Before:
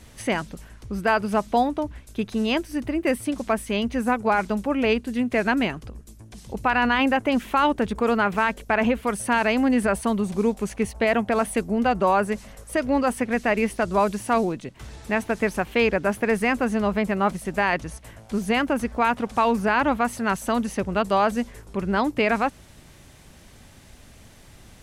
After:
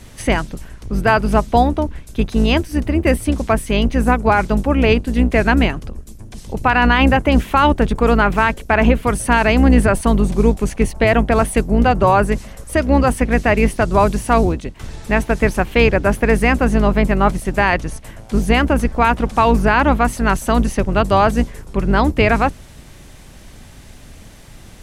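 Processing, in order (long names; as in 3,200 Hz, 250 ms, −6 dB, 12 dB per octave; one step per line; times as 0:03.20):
sub-octave generator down 2 octaves, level +2 dB
level +6.5 dB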